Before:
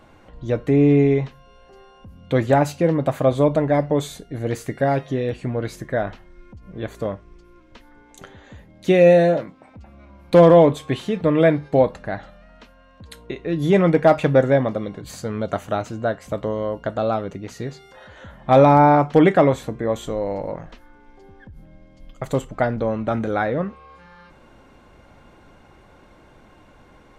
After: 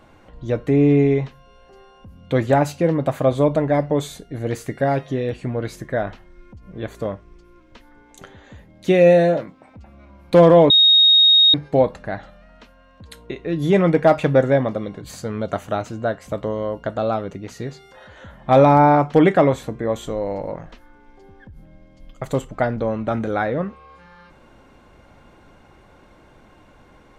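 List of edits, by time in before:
10.70–11.54 s: bleep 3.74 kHz -9 dBFS

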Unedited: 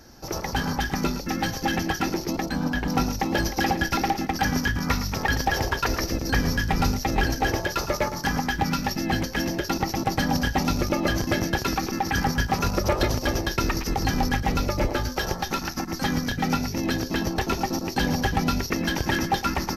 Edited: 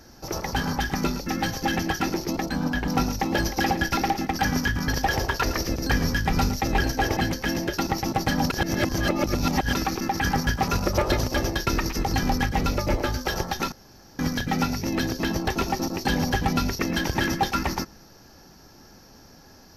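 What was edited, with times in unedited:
4.88–5.31 s: delete
7.60–9.08 s: delete
10.41–11.66 s: reverse
15.63–16.10 s: room tone

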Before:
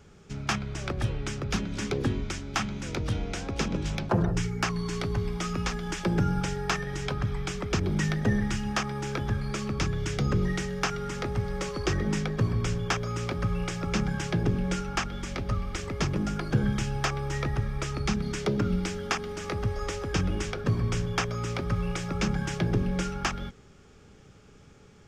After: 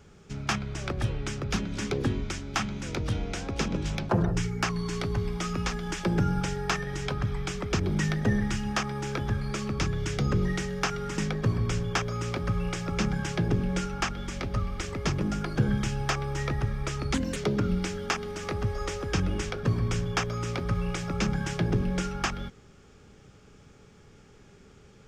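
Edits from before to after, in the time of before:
11.18–12.13 s: delete
18.09–18.37 s: speed 127%

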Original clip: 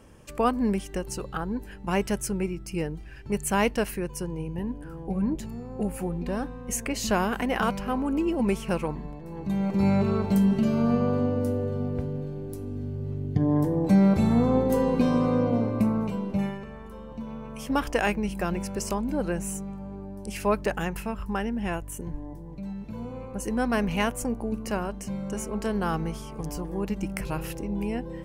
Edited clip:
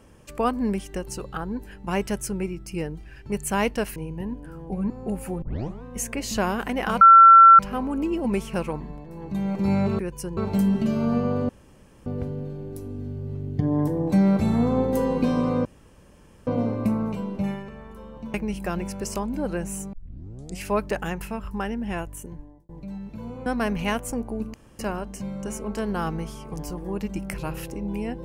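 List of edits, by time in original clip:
3.96–4.34 s: move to 10.14 s
5.28–5.63 s: delete
6.15 s: tape start 0.41 s
7.74 s: add tone 1.35 kHz -6.5 dBFS 0.58 s
11.26–11.83 s: room tone
15.42 s: insert room tone 0.82 s
17.29–18.09 s: delete
19.68 s: tape start 0.68 s
21.85–22.44 s: fade out linear
23.21–23.58 s: delete
24.66 s: insert room tone 0.25 s

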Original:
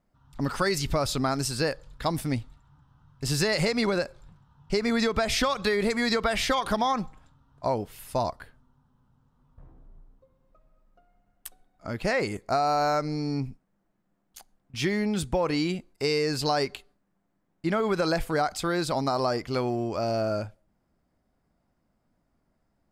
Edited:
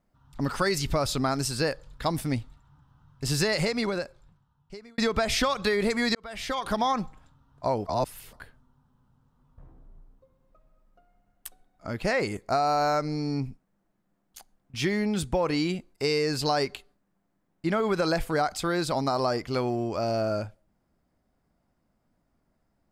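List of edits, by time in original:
3.42–4.98 s: fade out
6.15–6.84 s: fade in
7.86–8.33 s: reverse

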